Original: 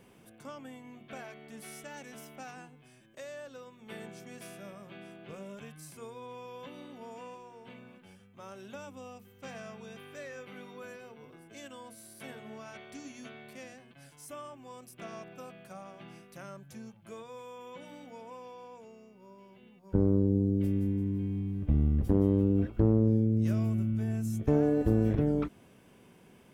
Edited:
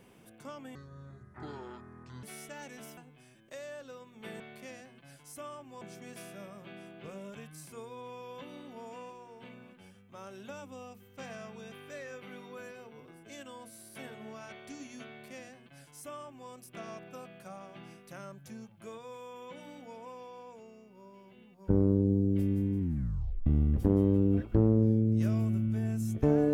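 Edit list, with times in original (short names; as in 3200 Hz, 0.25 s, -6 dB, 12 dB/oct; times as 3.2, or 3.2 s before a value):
0.75–1.58 speed 56%
2.32–2.63 cut
13.33–14.74 copy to 4.06
21.04 tape stop 0.67 s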